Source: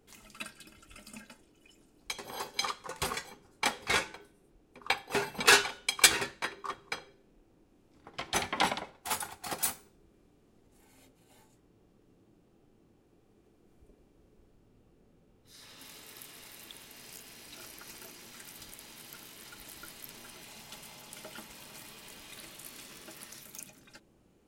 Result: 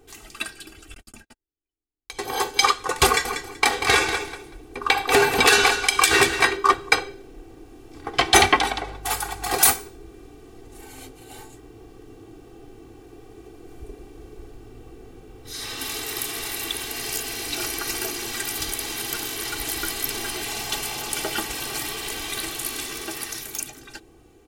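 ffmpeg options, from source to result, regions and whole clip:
ffmpeg -i in.wav -filter_complex "[0:a]asettb=1/sr,asplit=3[link_01][link_02][link_03];[link_01]atrim=end=0.944[link_04];[link_02]atrim=start=0.94:end=2.19,asetpts=PTS-STARTPTS,afade=type=in:duration=0.004:curve=qsin,afade=type=out:start_time=1.246:duration=0.004:curve=qsin,agate=range=-50dB:threshold=-50dB:ratio=16:release=100:detection=peak,lowshelf=frequency=180:gain=10.5,acompressor=threshold=-50dB:ratio=5:attack=3.2:release=140:knee=1:detection=peak[link_05];[link_03]atrim=start=2.186[link_06];[link_04][link_05]acrossfade=duration=0.004:curve1=hsin:curve2=qsin[link_07];[link_07][link_06]acrossfade=duration=0.004:curve1=qsin:curve2=hsin,asettb=1/sr,asplit=3[link_08][link_09][link_10];[link_08]atrim=end=3.064[link_11];[link_09]atrim=start=3.06:end=6.57,asetpts=PTS-STARTPTS,afade=type=in:duration=0.004:curve=qsin,afade=type=out:start_time=3.506:duration=0.004:curve=qsin,acompressor=threshold=-31dB:ratio=10:attack=3.2:release=140:knee=1:detection=peak,aecho=1:1:190|380|570:0.335|0.0636|0.0121,atrim=end_sample=154791[link_12];[link_10]atrim=start=6.566[link_13];[link_11][link_12]acrossfade=duration=0.004:curve1=hsin:curve2=qsin[link_14];[link_14][link_13]acrossfade=duration=0.004:curve1=qsin:curve2=hsin,asettb=1/sr,asplit=3[link_15][link_16][link_17];[link_15]atrim=end=8.564[link_18];[link_16]atrim=start=8.56:end=9.54,asetpts=PTS-STARTPTS,afade=type=in:duration=0.004:curve=qsin,afade=type=out:start_time=0.976:duration=0.004:curve=qsin,acompressor=threshold=-50dB:ratio=2:attack=3.2:release=140:knee=1:detection=peak,aeval=exprs='val(0)+0.00112*(sin(2*PI*50*n/s)+sin(2*PI*2*50*n/s)/2+sin(2*PI*3*50*n/s)/3+sin(2*PI*4*50*n/s)/4+sin(2*PI*5*50*n/s)/5)':channel_layout=same[link_19];[link_17]atrim=start=9.536[link_20];[link_18][link_19]acrossfade=duration=0.004:curve1=hsin:curve2=qsin[link_21];[link_21][link_20]acrossfade=duration=0.004:curve1=qsin:curve2=hsin,aecho=1:1:2.6:0.74,dynaudnorm=framelen=870:gausssize=7:maxgain=9dB,alimiter=level_in=10.5dB:limit=-1dB:release=50:level=0:latency=1,volume=-1dB" out.wav

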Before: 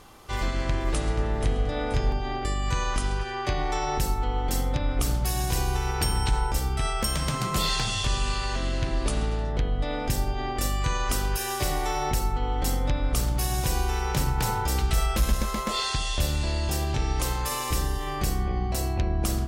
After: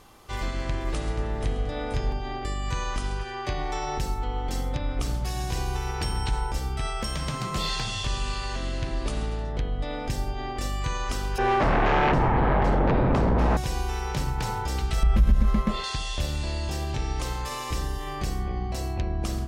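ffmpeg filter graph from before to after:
ffmpeg -i in.wav -filter_complex "[0:a]asettb=1/sr,asplit=3[link_01][link_02][link_03];[link_01]atrim=end=11.384[link_04];[link_02]atrim=start=11.38:end=13.57,asetpts=PTS-STARTPTS,afade=type=in:duration=0.004:curve=qsin,afade=type=out:start_time=2.186:duration=0.004:curve=qsin,lowpass=1300,aeval=exprs='0.178*sin(PI/2*3.98*val(0)/0.178)':channel_layout=same[link_05];[link_03]atrim=start=13.566[link_06];[link_04][link_05]acrossfade=duration=0.004:curve1=hsin:curve2=qsin[link_07];[link_07][link_06]acrossfade=duration=0.004:curve1=qsin:curve2=hsin,asettb=1/sr,asplit=3[link_08][link_09][link_10];[link_08]atrim=end=15.034[link_11];[link_09]atrim=start=15.03:end=15.84,asetpts=PTS-STARTPTS,afade=type=in:duration=0.004:curve=qsin,afade=type=out:start_time=0.806:duration=0.004:curve=qsin,bass=frequency=250:gain=13,treble=frequency=4000:gain=-14,acompressor=threshold=-13dB:ratio=3:attack=3.2:release=140:knee=1:detection=peak,aecho=1:1:5.1:0.31,atrim=end_sample=35721[link_12];[link_10]atrim=start=15.836[link_13];[link_11][link_12]acrossfade=duration=0.004:curve1=hsin:curve2=qsin[link_14];[link_14][link_13]acrossfade=duration=0.004:curve1=qsin:curve2=hsin,acrossover=split=7200[link_15][link_16];[link_16]acompressor=threshold=-47dB:ratio=4:attack=1:release=60[link_17];[link_15][link_17]amix=inputs=2:normalize=0,bandreject=frequency=1400:width=23,volume=-2.5dB" out.wav

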